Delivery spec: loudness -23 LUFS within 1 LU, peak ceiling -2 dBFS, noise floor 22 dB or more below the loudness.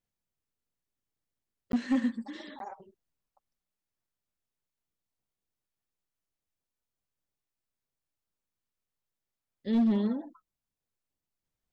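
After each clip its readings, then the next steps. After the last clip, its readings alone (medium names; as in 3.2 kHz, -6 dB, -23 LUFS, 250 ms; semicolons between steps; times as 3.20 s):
clipped samples 0.4%; clipping level -21.0 dBFS; dropouts 2; longest dropout 12 ms; loudness -30.0 LUFS; peak level -21.0 dBFS; loudness target -23.0 LUFS
-> clip repair -21 dBFS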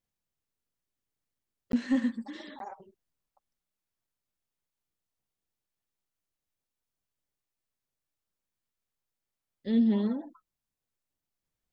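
clipped samples 0.0%; dropouts 2; longest dropout 12 ms
-> interpolate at 1.72/2.59 s, 12 ms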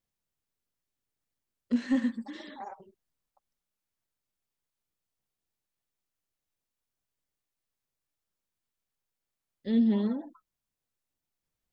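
dropouts 0; loudness -29.0 LUFS; peak level -17.0 dBFS; loudness target -23.0 LUFS
-> trim +6 dB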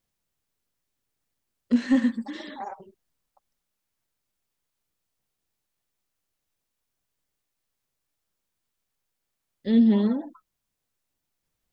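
loudness -23.0 LUFS; peak level -11.0 dBFS; noise floor -82 dBFS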